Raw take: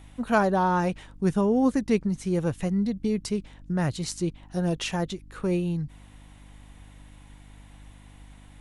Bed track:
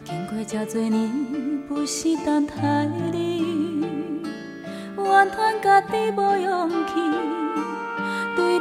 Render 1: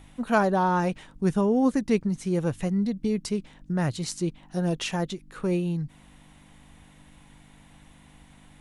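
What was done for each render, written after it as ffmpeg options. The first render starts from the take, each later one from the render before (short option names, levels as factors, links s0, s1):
-af "bandreject=f=50:t=h:w=4,bandreject=f=100:t=h:w=4"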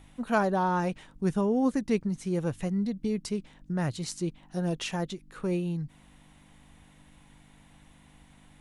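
-af "volume=0.668"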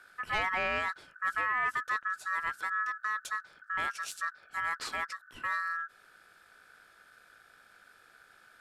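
-af "aeval=exprs='(tanh(12.6*val(0)+0.3)-tanh(0.3))/12.6':c=same,aeval=exprs='val(0)*sin(2*PI*1500*n/s)':c=same"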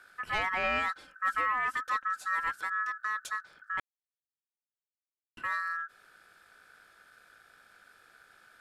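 -filter_complex "[0:a]asettb=1/sr,asplit=3[s0][s1][s2];[s0]atrim=end=0.634[s3];[s1]atrim=start=0.63:end=2.51,asetpts=PTS-STARTPTS,afade=t=in:d=0.004:c=qsin,afade=t=out:st=1.876:d=0.004:c=qsin,aecho=1:1:3.8:0.64,atrim=end_sample=82908[s4];[s2]atrim=start=2.506[s5];[s3][s4]acrossfade=d=0.004:c1=hsin:c2=qsin[s6];[s6][s5]acrossfade=d=0.004:c1=qsin:c2=hsin,asplit=3[s7][s8][s9];[s7]atrim=end=3.8,asetpts=PTS-STARTPTS,afade=t=out:st=3.796:d=0.004:c=hsin[s10];[s8]atrim=start=3.8:end=5.37,asetpts=PTS-STARTPTS,volume=0[s11];[s9]atrim=start=5.37,asetpts=PTS-STARTPTS,afade=t=in:d=0.004:c=hsin[s12];[s10][s11][s12]concat=n=3:v=0:a=1"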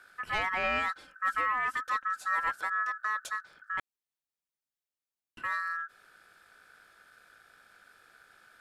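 -filter_complex "[0:a]asettb=1/sr,asplit=3[s0][s1][s2];[s0]atrim=end=2.254[s3];[s1]atrim=start=2.25:end=3.29,asetpts=PTS-STARTPTS,afade=t=in:d=0.004:c=qsin,afade=t=out:st=1.036:d=0.004:c=qsin,equalizer=f=650:t=o:w=1.1:g=7.5[s4];[s2]atrim=start=3.286[s5];[s3][s4]acrossfade=d=0.004:c1=hsin:c2=qsin[s6];[s6][s5]acrossfade=d=0.004:c1=qsin:c2=hsin"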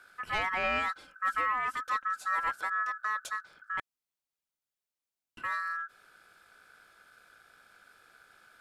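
-af "bandreject=f=1800:w=16"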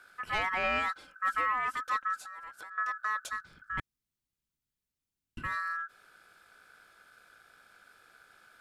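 -filter_complex "[0:a]asettb=1/sr,asplit=3[s0][s1][s2];[s0]atrim=end=2.164[s3];[s1]atrim=start=2.16:end=2.78,asetpts=PTS-STARTPTS,afade=t=in:d=0.004:c=qsin,afade=t=out:st=0.616:d=0.004:c=qsin,acompressor=threshold=0.00794:ratio=10:attack=3.2:release=140:knee=1:detection=peak[s4];[s2]atrim=start=2.776[s5];[s3][s4]acrossfade=d=0.004:c1=hsin:c2=qsin[s6];[s6][s5]acrossfade=d=0.004:c1=qsin:c2=hsin,asplit=3[s7][s8][s9];[s7]afade=t=out:st=3.3:d=0.02[s10];[s8]asubboost=boost=9:cutoff=220,afade=t=in:st=3.3:d=0.02,afade=t=out:st=5.55:d=0.02[s11];[s9]afade=t=in:st=5.55:d=0.02[s12];[s10][s11][s12]amix=inputs=3:normalize=0"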